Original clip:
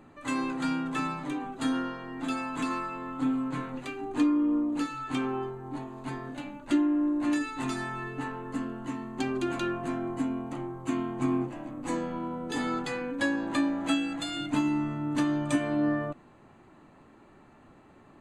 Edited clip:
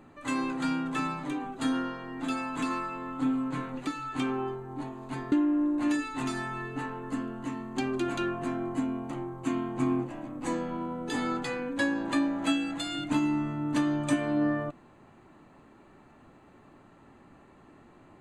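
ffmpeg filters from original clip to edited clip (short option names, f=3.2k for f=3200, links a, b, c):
-filter_complex "[0:a]asplit=3[a][b][c];[a]atrim=end=3.872[d];[b]atrim=start=4.818:end=6.272[e];[c]atrim=start=6.738[f];[d][e]acrossfade=d=0.004:c1=hsin:c2=hsin[g];[g][f]acrossfade=d=0.004:c1=hsin:c2=hsin"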